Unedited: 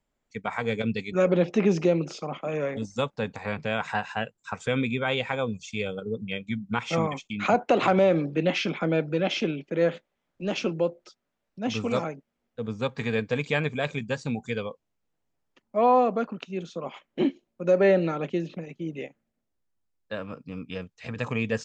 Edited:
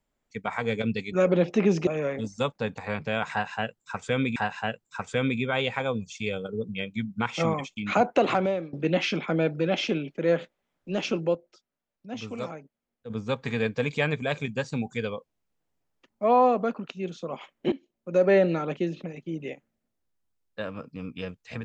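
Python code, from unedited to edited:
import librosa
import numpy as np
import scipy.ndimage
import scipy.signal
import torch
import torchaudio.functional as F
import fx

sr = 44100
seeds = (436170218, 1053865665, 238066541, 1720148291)

y = fx.edit(x, sr, fx.cut(start_s=1.87, length_s=0.58),
    fx.repeat(start_s=3.89, length_s=1.05, count=2),
    fx.fade_out_to(start_s=7.74, length_s=0.52, floor_db=-23.0),
    fx.clip_gain(start_s=10.88, length_s=1.75, db=-7.5),
    fx.fade_in_from(start_s=17.25, length_s=0.5, floor_db=-16.5), tone=tone)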